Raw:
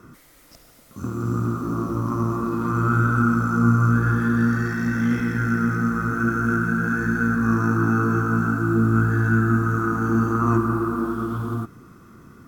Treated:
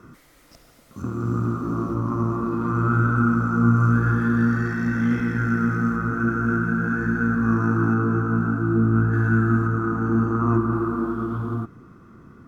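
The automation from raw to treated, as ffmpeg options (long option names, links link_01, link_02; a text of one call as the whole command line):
ffmpeg -i in.wav -af "asetnsamples=nb_out_samples=441:pad=0,asendcmd='1.02 lowpass f 3200;1.94 lowpass f 2100;3.76 lowpass f 3200;5.96 lowpass f 1900;7.94 lowpass f 1100;9.13 lowpass f 2200;9.67 lowpass f 1200;10.73 lowpass f 1800',lowpass=frequency=5800:poles=1" out.wav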